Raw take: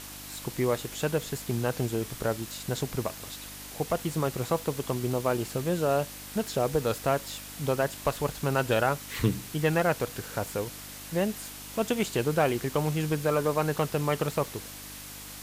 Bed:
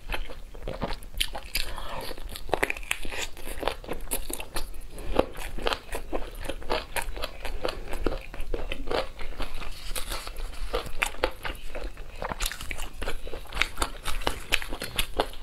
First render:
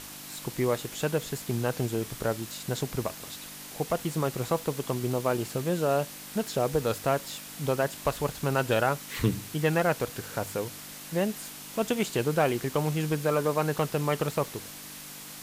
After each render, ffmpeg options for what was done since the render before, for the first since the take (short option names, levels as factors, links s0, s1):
-af "bandreject=f=50:t=h:w=4,bandreject=f=100:t=h:w=4"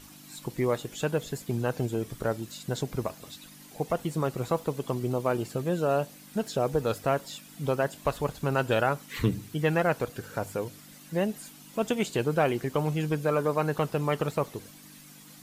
-af "afftdn=nr=11:nf=-43"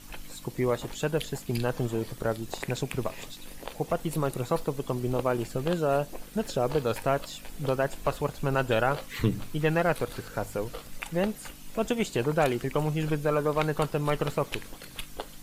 -filter_complex "[1:a]volume=0.266[s0];[0:a][s0]amix=inputs=2:normalize=0"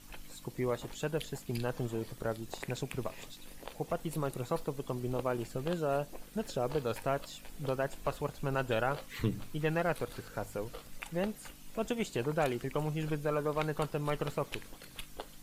-af "volume=0.473"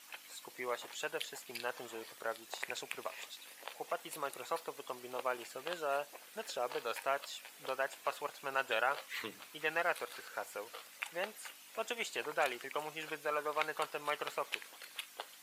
-af "highpass=680,equalizer=f=2200:t=o:w=1.5:g=4"